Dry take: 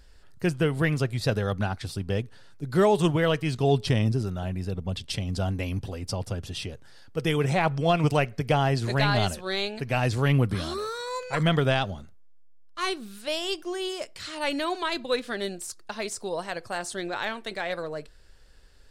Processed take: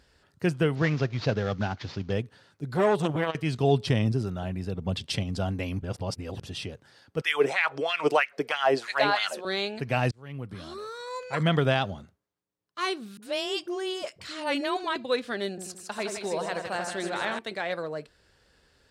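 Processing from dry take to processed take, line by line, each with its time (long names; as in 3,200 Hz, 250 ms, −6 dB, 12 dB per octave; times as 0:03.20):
0:00.75–0:02.13: variable-slope delta modulation 32 kbit/s
0:02.72–0:03.35: saturating transformer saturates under 650 Hz
0:04.82–0:05.23: clip gain +3 dB
0:05.82–0:06.41: reverse
0:07.21–0:09.45: auto-filter high-pass sine 3.1 Hz 340–2,100 Hz
0:10.11–0:11.60: fade in
0:13.17–0:14.96: all-pass dispersion highs, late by 55 ms, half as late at 490 Hz
0:15.49–0:17.39: echo with a time of its own for lows and highs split 1,700 Hz, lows 84 ms, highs 157 ms, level −4.5 dB
whole clip: high-pass filter 94 Hz; high-shelf EQ 7,000 Hz −7.5 dB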